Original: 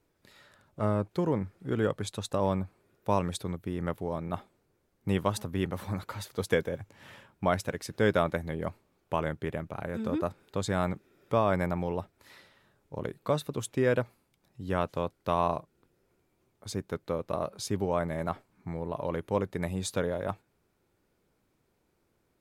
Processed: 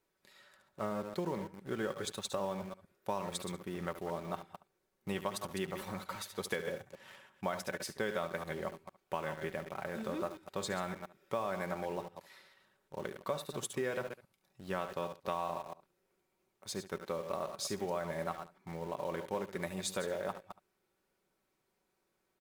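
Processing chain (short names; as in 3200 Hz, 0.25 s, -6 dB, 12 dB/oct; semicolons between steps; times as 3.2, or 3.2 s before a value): reverse delay 0.114 s, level -10 dB; low shelf 300 Hz -11.5 dB; comb 5.3 ms, depth 41%; on a send: echo 71 ms -14 dB; on the sum: compressor, threshold -30 dBFS, peak gain reduction 8.5 dB; in parallel at -9 dB: bit-crush 7-bit; on the sum: gain -4.5 dB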